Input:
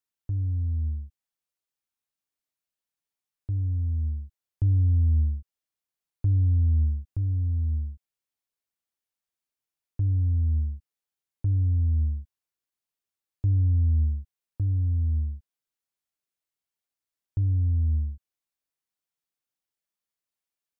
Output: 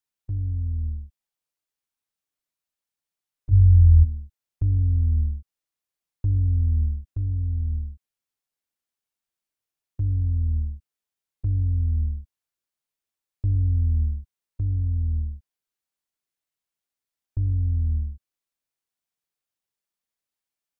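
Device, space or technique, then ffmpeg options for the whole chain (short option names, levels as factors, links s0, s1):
octave pedal: -filter_complex "[0:a]asplit=3[s0][s1][s2];[s0]afade=t=out:st=3.51:d=0.02[s3];[s1]asubboost=boost=7.5:cutoff=140,afade=t=in:st=3.51:d=0.02,afade=t=out:st=4.03:d=0.02[s4];[s2]afade=t=in:st=4.03:d=0.02[s5];[s3][s4][s5]amix=inputs=3:normalize=0,asplit=2[s6][s7];[s7]asetrate=22050,aresample=44100,atempo=2,volume=0.355[s8];[s6][s8]amix=inputs=2:normalize=0"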